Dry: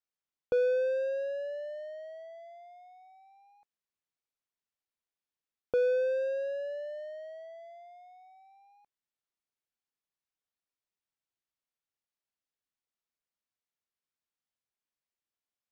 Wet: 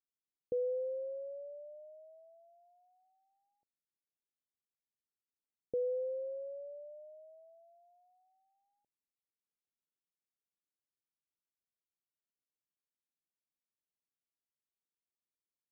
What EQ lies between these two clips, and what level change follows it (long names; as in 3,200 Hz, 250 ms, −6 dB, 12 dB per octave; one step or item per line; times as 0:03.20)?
Gaussian smoothing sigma 21 samples
spectral tilt +3.5 dB per octave
+5.5 dB